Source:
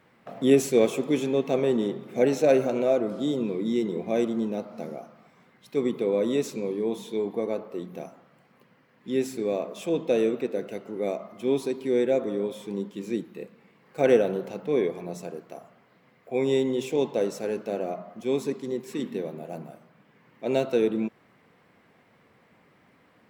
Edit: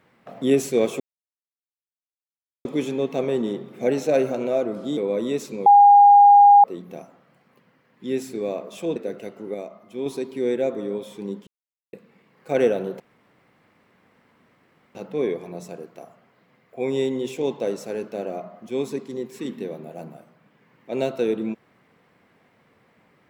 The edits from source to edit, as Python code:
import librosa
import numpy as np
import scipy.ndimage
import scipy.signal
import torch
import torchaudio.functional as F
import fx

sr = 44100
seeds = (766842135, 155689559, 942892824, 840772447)

y = fx.edit(x, sr, fx.insert_silence(at_s=1.0, length_s=1.65),
    fx.cut(start_s=3.32, length_s=2.69),
    fx.bleep(start_s=6.7, length_s=0.98, hz=813.0, db=-7.5),
    fx.cut(start_s=10.0, length_s=0.45),
    fx.clip_gain(start_s=11.03, length_s=0.52, db=-5.0),
    fx.silence(start_s=12.96, length_s=0.46),
    fx.insert_room_tone(at_s=14.49, length_s=1.95), tone=tone)